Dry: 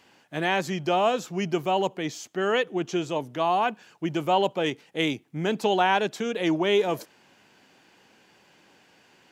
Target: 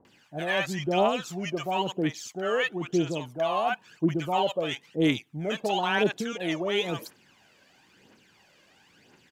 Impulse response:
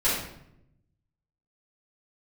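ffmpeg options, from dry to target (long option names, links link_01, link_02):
-filter_complex "[0:a]aphaser=in_gain=1:out_gain=1:delay=1.9:decay=0.59:speed=0.99:type=triangular,acrossover=split=830[link_01][link_02];[link_02]adelay=50[link_03];[link_01][link_03]amix=inputs=2:normalize=0,volume=-2.5dB"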